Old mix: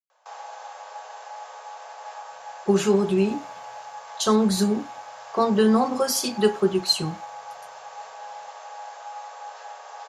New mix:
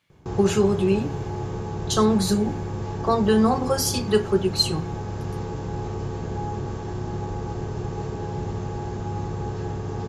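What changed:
speech: entry -2.30 s; background: remove steep high-pass 550 Hz 72 dB/oct

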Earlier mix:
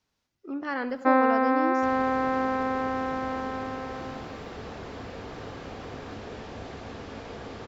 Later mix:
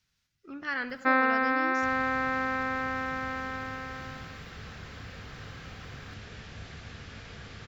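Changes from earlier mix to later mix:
speech +3.5 dB; first sound +5.5 dB; master: add band shelf 500 Hz -12.5 dB 2.5 oct

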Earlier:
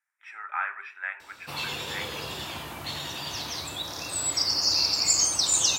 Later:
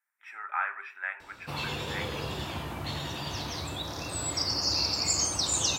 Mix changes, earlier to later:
speech: remove air absorption 52 m; master: add tilt -2 dB/oct

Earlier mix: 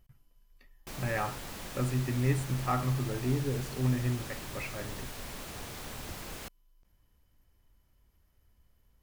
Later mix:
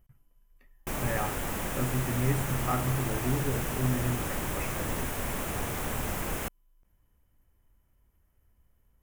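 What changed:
background +10.5 dB; master: add bell 4400 Hz -12.5 dB 0.89 oct

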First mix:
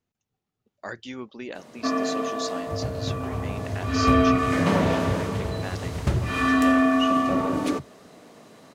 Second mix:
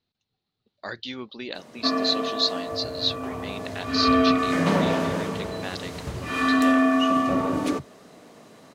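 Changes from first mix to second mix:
speech: add synth low-pass 4100 Hz, resonance Q 6.6; second sound -11.0 dB

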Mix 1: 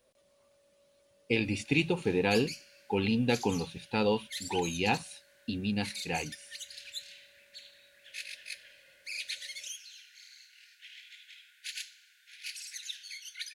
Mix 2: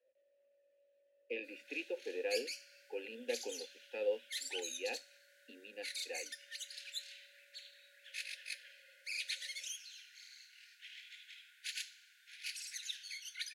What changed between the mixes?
speech: add vowel filter e; master: add rippled Chebyshev high-pass 230 Hz, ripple 3 dB

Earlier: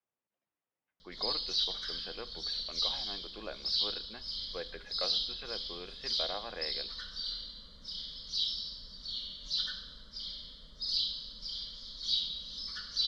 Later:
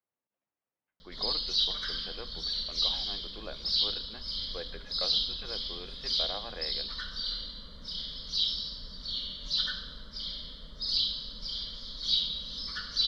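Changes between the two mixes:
background +8.0 dB; master: add bell 6800 Hz -7.5 dB 1.6 oct

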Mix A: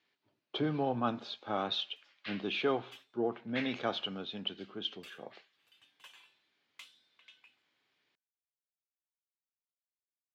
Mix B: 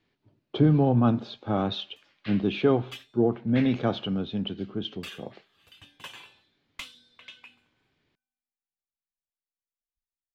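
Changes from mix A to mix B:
background +11.5 dB; master: remove HPF 1100 Hz 6 dB/oct

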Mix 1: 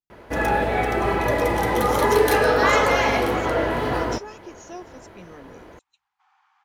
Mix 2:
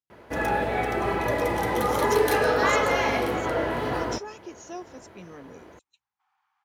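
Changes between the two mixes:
first sound -4.0 dB; second sound -11.0 dB; master: add HPF 63 Hz

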